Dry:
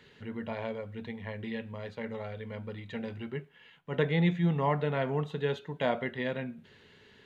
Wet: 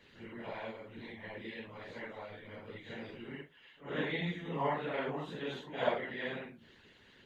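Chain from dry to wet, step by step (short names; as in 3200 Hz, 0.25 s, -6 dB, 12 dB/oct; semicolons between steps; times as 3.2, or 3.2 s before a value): phase scrambler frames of 0.2 s; harmonic-percussive split harmonic -17 dB; gain +3 dB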